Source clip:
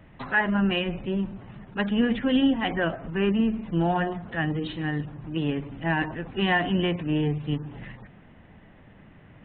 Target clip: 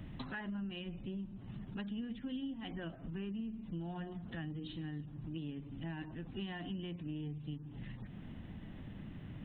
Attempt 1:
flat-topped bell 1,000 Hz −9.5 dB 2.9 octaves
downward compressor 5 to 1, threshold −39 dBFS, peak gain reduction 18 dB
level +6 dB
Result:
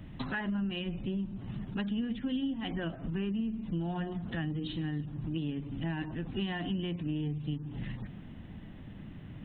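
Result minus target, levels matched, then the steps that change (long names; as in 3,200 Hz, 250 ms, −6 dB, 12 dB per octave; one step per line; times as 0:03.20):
downward compressor: peak gain reduction −8 dB
change: downward compressor 5 to 1, threshold −49 dBFS, peak gain reduction 26 dB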